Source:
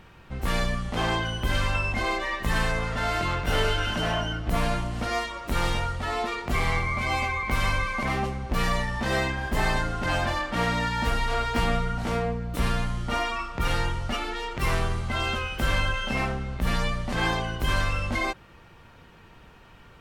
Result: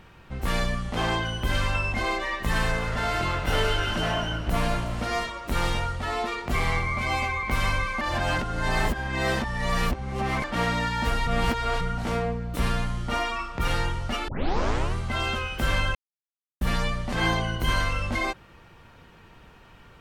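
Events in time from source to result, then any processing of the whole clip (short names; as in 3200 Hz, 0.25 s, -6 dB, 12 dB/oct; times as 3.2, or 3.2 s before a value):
2.37–5.3 frequency-shifting echo 0.181 s, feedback 57%, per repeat -52 Hz, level -13 dB
8.01–10.44 reverse
11.27–11.81 reverse
14.28 tape start 0.66 s
15.95–16.61 mute
17.2–18.02 ripple EQ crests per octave 1.9, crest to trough 7 dB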